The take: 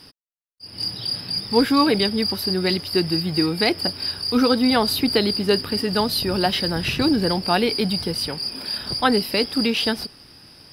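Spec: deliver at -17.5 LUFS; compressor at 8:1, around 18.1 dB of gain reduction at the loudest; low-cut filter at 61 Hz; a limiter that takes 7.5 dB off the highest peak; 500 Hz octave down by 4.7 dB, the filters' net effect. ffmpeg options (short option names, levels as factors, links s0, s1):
-af "highpass=61,equalizer=f=500:t=o:g=-6,acompressor=threshold=0.02:ratio=8,volume=10,alimiter=limit=0.355:level=0:latency=1"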